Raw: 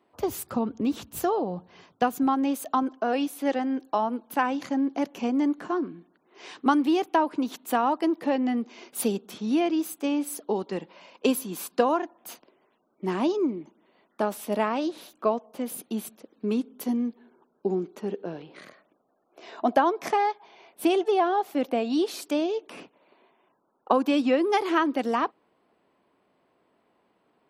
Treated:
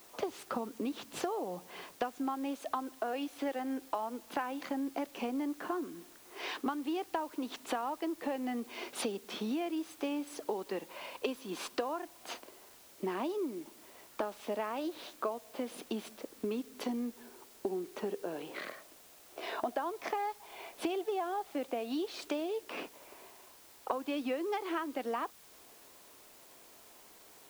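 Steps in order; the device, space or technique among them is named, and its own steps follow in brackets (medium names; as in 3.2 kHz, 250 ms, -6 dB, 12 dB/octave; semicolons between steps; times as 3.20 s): baby monitor (band-pass 310–4400 Hz; compression 6:1, threshold -40 dBFS, peak gain reduction 21.5 dB; white noise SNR 20 dB); trim +6 dB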